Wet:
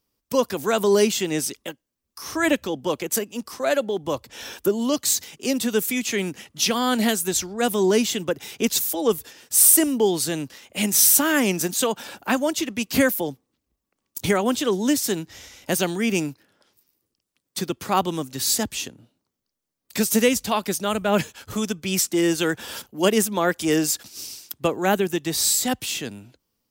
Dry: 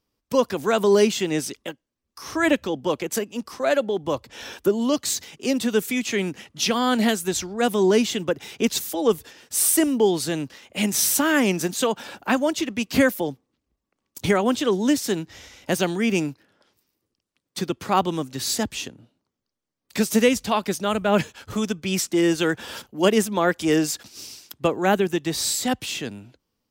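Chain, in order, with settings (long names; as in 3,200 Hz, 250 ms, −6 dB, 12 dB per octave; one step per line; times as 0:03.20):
high-shelf EQ 7,200 Hz +10.5 dB
level −1 dB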